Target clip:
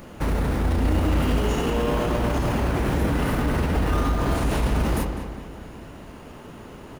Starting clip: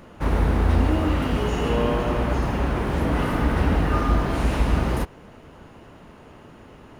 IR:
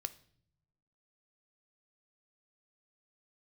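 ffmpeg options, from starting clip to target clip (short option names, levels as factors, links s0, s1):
-filter_complex "[0:a]highshelf=f=6900:g=10,bandreject=f=45.58:t=h:w=4,bandreject=f=91.16:t=h:w=4,bandreject=f=136.74:t=h:w=4,bandreject=f=182.32:t=h:w=4,bandreject=f=227.9:t=h:w=4,bandreject=f=273.48:t=h:w=4,bandreject=f=319.06:t=h:w=4,bandreject=f=364.64:t=h:w=4,bandreject=f=410.22:t=h:w=4,bandreject=f=455.8:t=h:w=4,bandreject=f=501.38:t=h:w=4,bandreject=f=546.96:t=h:w=4,bandreject=f=592.54:t=h:w=4,bandreject=f=638.12:t=h:w=4,bandreject=f=683.7:t=h:w=4,bandreject=f=729.28:t=h:w=4,bandreject=f=774.86:t=h:w=4,bandreject=f=820.44:t=h:w=4,bandreject=f=866.02:t=h:w=4,bandreject=f=911.6:t=h:w=4,bandreject=f=957.18:t=h:w=4,bandreject=f=1002.76:t=h:w=4,bandreject=f=1048.34:t=h:w=4,bandreject=f=1093.92:t=h:w=4,bandreject=f=1139.5:t=h:w=4,bandreject=f=1185.08:t=h:w=4,bandreject=f=1230.66:t=h:w=4,bandreject=f=1276.24:t=h:w=4,alimiter=limit=0.1:level=0:latency=1:release=30,asplit=2[s0][s1];[s1]acrusher=samples=22:mix=1:aa=0.000001:lfo=1:lforange=13.2:lforate=0.4,volume=0.335[s2];[s0][s2]amix=inputs=2:normalize=0,asplit=2[s3][s4];[s4]adelay=202,lowpass=f=3500:p=1,volume=0.398,asplit=2[s5][s6];[s6]adelay=202,lowpass=f=3500:p=1,volume=0.51,asplit=2[s7][s8];[s8]adelay=202,lowpass=f=3500:p=1,volume=0.51,asplit=2[s9][s10];[s10]adelay=202,lowpass=f=3500:p=1,volume=0.51,asplit=2[s11][s12];[s12]adelay=202,lowpass=f=3500:p=1,volume=0.51,asplit=2[s13][s14];[s14]adelay=202,lowpass=f=3500:p=1,volume=0.51[s15];[s3][s5][s7][s9][s11][s13][s15]amix=inputs=7:normalize=0,volume=1.33"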